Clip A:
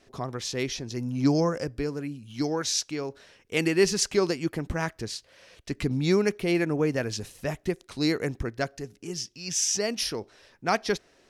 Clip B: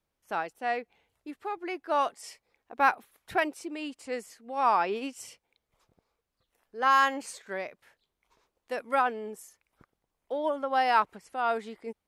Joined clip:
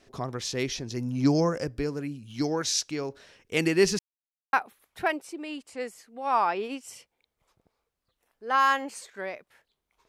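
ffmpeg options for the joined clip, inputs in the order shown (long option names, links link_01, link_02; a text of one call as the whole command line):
ffmpeg -i cue0.wav -i cue1.wav -filter_complex "[0:a]apad=whole_dur=10.08,atrim=end=10.08,asplit=2[link_01][link_02];[link_01]atrim=end=3.99,asetpts=PTS-STARTPTS,afade=type=out:start_time=3.986:duration=0.004:curve=hsin[link_03];[link_02]atrim=start=3.99:end=4.53,asetpts=PTS-STARTPTS,volume=0[link_04];[1:a]atrim=start=2.85:end=8.4,asetpts=PTS-STARTPTS,afade=type=in:duration=0.004:curve=hsin[link_05];[link_03][link_04][link_05]concat=n=3:v=0:a=1" out.wav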